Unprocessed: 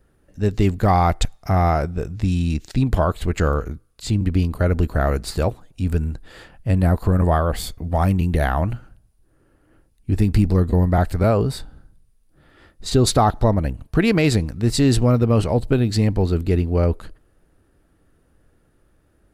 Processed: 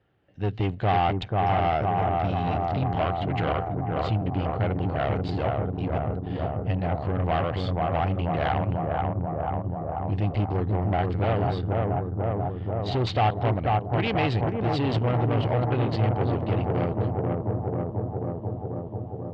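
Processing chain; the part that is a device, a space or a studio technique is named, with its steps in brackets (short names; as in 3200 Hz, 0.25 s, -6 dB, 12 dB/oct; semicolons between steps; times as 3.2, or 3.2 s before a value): analogue delay pedal into a guitar amplifier (analogue delay 0.488 s, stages 4096, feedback 76%, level -3.5 dB; tube stage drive 17 dB, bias 0.55; speaker cabinet 100–4100 Hz, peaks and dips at 110 Hz +8 dB, 230 Hz -5 dB, 760 Hz +7 dB, 2100 Hz +4 dB, 3000 Hz +8 dB); gain -4 dB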